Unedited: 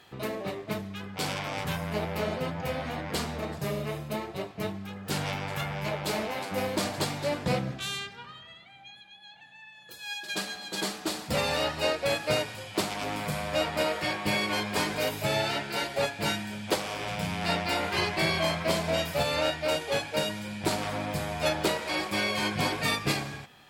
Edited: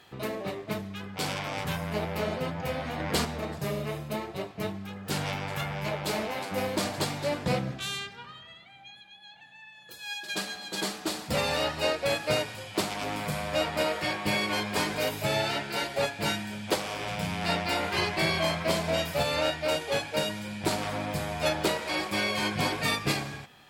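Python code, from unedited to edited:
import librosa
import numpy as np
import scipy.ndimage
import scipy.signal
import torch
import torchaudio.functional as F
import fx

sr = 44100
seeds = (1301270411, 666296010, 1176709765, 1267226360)

y = fx.edit(x, sr, fx.clip_gain(start_s=3.0, length_s=0.25, db=4.0), tone=tone)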